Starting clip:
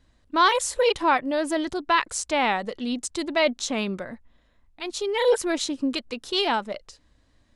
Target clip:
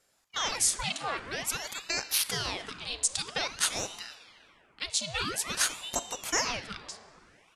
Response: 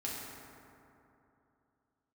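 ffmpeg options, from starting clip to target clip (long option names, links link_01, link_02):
-filter_complex "[0:a]highpass=480,acompressor=threshold=-25dB:ratio=4,crystalizer=i=8.5:c=0,asplit=2[link_01][link_02];[1:a]atrim=start_sample=2205,lowpass=6000[link_03];[link_02][link_03]afir=irnorm=-1:irlink=0,volume=-8.5dB[link_04];[link_01][link_04]amix=inputs=2:normalize=0,aresample=22050,aresample=44100,alimiter=level_in=-0.5dB:limit=-1dB:release=50:level=0:latency=1,aeval=exprs='val(0)*sin(2*PI*1800*n/s+1800*0.9/0.5*sin(2*PI*0.5*n/s))':channel_layout=same,volume=-9dB"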